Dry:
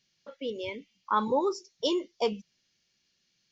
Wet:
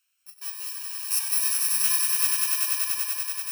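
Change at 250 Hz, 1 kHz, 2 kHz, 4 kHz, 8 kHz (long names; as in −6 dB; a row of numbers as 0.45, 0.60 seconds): below −40 dB, −9.5 dB, +9.0 dB, +7.0 dB, can't be measured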